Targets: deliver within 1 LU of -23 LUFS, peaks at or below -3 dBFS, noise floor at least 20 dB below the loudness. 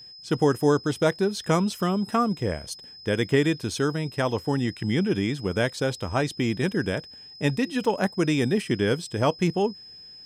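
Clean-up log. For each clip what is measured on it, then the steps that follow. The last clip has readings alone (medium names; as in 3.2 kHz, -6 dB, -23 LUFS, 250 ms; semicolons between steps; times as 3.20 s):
steady tone 5.1 kHz; tone level -43 dBFS; loudness -25.5 LUFS; peak level -9.0 dBFS; loudness target -23.0 LUFS
-> band-stop 5.1 kHz, Q 30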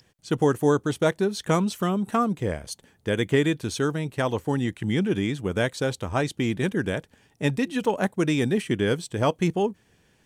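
steady tone not found; loudness -25.5 LUFS; peak level -9.0 dBFS; loudness target -23.0 LUFS
-> trim +2.5 dB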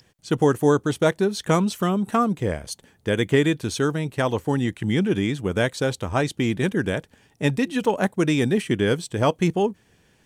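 loudness -23.0 LUFS; peak level -6.5 dBFS; noise floor -61 dBFS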